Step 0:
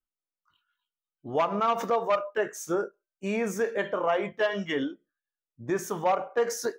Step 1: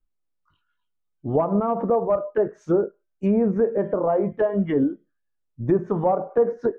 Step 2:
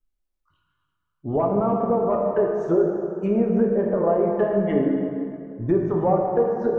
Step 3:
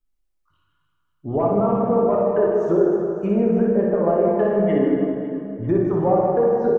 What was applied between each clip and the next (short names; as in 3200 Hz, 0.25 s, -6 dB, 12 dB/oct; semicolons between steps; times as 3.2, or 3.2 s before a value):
treble ducked by the level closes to 840 Hz, closed at -25.5 dBFS; tilt -3.5 dB/oct; gain +3.5 dB
plate-style reverb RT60 2.6 s, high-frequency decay 0.6×, DRR 0 dB; gain -2 dB
reverse bouncing-ball echo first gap 60 ms, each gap 1.6×, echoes 5